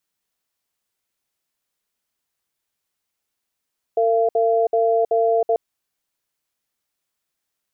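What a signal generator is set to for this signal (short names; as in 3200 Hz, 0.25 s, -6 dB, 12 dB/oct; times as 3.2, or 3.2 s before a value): cadence 454 Hz, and 682 Hz, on 0.32 s, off 0.06 s, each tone -17.5 dBFS 1.59 s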